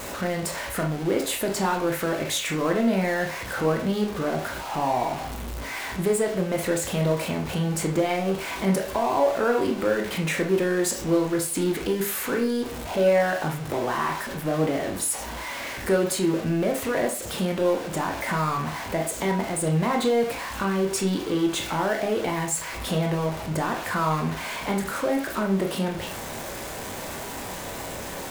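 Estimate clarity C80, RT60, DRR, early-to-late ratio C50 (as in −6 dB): 14.0 dB, 0.40 s, 1.5 dB, 8.5 dB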